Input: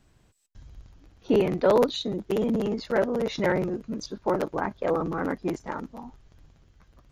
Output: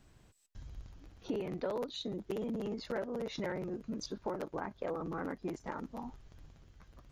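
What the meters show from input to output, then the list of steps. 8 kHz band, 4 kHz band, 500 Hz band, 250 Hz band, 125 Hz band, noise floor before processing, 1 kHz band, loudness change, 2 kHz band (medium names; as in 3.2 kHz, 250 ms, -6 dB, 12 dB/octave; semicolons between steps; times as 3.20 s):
-8.0 dB, -9.5 dB, -13.5 dB, -11.5 dB, -11.0 dB, -62 dBFS, -12.5 dB, -13.0 dB, -12.5 dB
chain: compression 4:1, threshold -36 dBFS, peak gain reduction 16.5 dB; trim -1 dB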